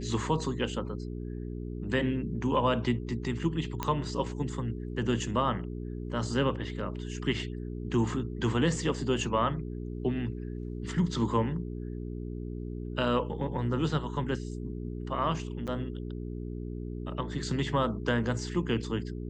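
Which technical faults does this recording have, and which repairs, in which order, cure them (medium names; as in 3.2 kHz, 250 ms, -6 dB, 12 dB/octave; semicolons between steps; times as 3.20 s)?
hum 60 Hz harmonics 7 -37 dBFS
3.83 s: pop -15 dBFS
15.67–15.68 s: dropout 6.9 ms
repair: de-click; de-hum 60 Hz, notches 7; interpolate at 15.67 s, 6.9 ms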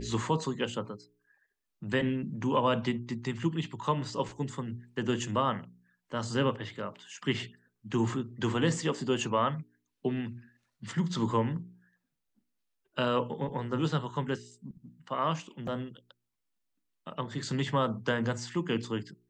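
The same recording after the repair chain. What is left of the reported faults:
nothing left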